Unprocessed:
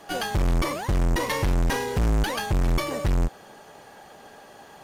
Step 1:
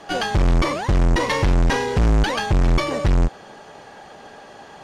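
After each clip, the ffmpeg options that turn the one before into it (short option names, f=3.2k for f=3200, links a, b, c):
-af "lowpass=6.4k,volume=5.5dB"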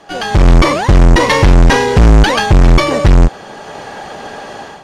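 -af "dynaudnorm=f=120:g=5:m=14dB"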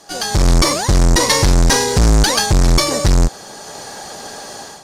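-af "aexciter=amount=5.1:drive=6:freq=4.1k,volume=-5.5dB"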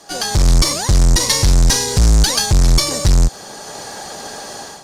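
-filter_complex "[0:a]acrossover=split=160|3000[a][b][c];[b]acompressor=threshold=-23dB:ratio=6[d];[a][d][c]amix=inputs=3:normalize=0,volume=1dB"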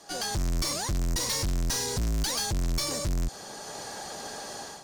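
-af "asoftclip=type=tanh:threshold=-17.5dB,volume=-8dB"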